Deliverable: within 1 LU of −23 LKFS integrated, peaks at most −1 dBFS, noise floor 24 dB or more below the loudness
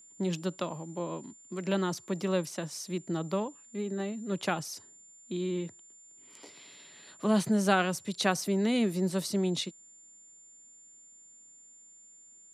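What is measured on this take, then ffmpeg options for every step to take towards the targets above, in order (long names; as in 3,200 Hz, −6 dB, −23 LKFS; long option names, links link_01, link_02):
interfering tone 7,200 Hz; level of the tone −53 dBFS; integrated loudness −31.5 LKFS; sample peak −12.0 dBFS; target loudness −23.0 LKFS
→ -af "bandreject=frequency=7200:width=30"
-af "volume=8.5dB"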